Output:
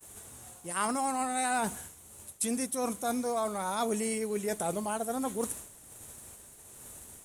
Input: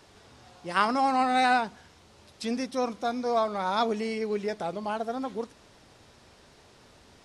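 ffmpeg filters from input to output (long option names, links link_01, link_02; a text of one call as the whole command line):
ffmpeg -i in.wav -filter_complex "[0:a]agate=range=-33dB:threshold=-49dB:ratio=3:detection=peak,aexciter=amount=11:drive=9.3:freq=7500,tremolo=f=1.3:d=0.42,asplit=2[link_01][link_02];[link_02]acrusher=bits=4:mode=log:mix=0:aa=0.000001,volume=-11dB[link_03];[link_01][link_03]amix=inputs=2:normalize=0,lowshelf=frequency=170:gain=4.5,areverse,acompressor=threshold=-34dB:ratio=4,areverse,volume=4dB" out.wav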